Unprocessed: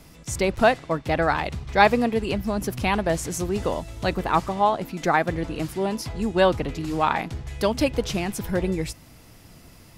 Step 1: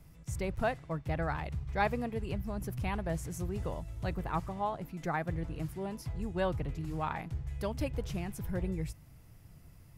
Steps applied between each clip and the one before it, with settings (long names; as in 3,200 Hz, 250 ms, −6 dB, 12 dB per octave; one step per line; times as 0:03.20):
drawn EQ curve 150 Hz 0 dB, 220 Hz −10 dB, 2,000 Hz −10 dB, 4,000 Hz −15 dB, 8,400 Hz −11 dB, 13,000 Hz −7 dB
level −4 dB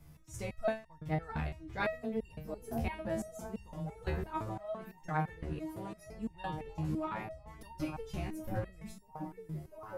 echo through a band-pass that steps 695 ms, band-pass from 230 Hz, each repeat 0.7 octaves, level −2 dB
step-sequenced resonator 5.9 Hz 76–910 Hz
level +8 dB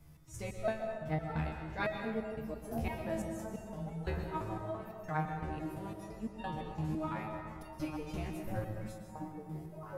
dense smooth reverb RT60 1.7 s, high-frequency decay 0.6×, pre-delay 105 ms, DRR 4 dB
level −1.5 dB